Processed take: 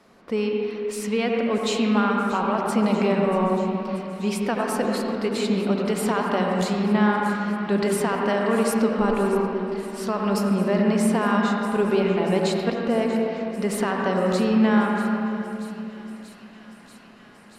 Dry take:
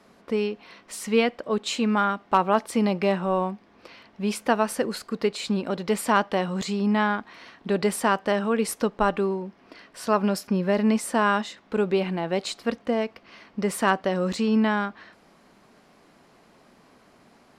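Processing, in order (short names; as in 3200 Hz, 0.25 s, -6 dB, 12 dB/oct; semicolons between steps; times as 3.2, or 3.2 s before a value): limiter -15 dBFS, peak gain reduction 7.5 dB; thin delay 0.635 s, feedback 81%, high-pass 2100 Hz, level -16 dB; reverb RT60 3.0 s, pre-delay 71 ms, DRR -0.5 dB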